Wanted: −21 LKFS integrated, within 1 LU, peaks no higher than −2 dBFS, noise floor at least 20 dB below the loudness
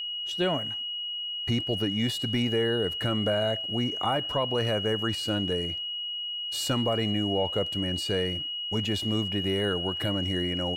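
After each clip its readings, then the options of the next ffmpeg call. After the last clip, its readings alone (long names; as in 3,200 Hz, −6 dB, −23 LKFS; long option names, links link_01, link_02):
interfering tone 2,900 Hz; level of the tone −31 dBFS; integrated loudness −27.5 LKFS; sample peak −16.0 dBFS; target loudness −21.0 LKFS
→ -af "bandreject=frequency=2900:width=30"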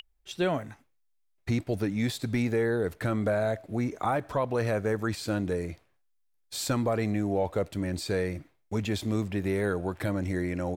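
interfering tone none found; integrated loudness −30.0 LKFS; sample peak −17.0 dBFS; target loudness −21.0 LKFS
→ -af "volume=9dB"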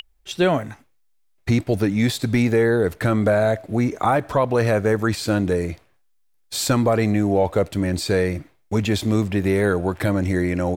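integrated loudness −21.0 LKFS; sample peak −8.0 dBFS; background noise floor −62 dBFS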